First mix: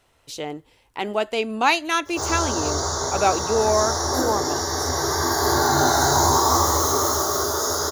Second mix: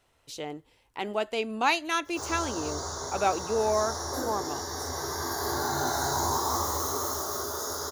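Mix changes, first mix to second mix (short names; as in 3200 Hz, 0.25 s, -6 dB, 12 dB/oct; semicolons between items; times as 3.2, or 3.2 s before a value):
speech -6.0 dB; background: send -11.0 dB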